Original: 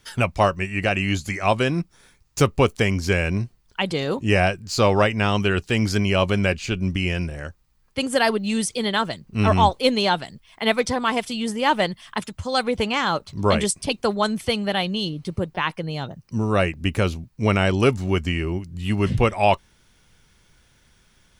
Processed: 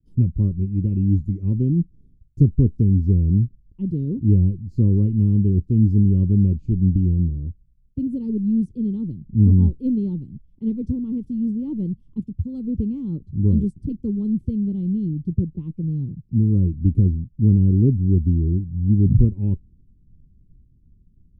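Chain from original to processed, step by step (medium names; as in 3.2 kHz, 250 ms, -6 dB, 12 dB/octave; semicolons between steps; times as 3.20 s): inverse Chebyshev low-pass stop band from 630 Hz, stop band 40 dB; expander -57 dBFS; bass shelf 210 Hz +10 dB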